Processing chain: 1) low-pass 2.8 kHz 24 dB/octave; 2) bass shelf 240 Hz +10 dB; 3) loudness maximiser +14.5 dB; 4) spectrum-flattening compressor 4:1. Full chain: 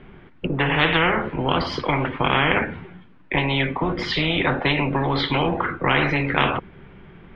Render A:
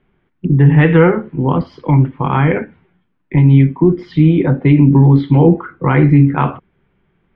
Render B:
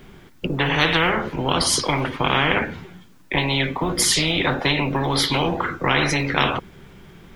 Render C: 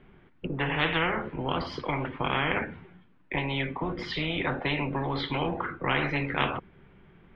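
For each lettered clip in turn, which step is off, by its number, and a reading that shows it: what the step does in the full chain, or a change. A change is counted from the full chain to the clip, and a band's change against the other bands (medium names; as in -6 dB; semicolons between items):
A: 4, 2 kHz band -13.0 dB; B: 1, 4 kHz band +4.0 dB; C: 3, loudness change -8.0 LU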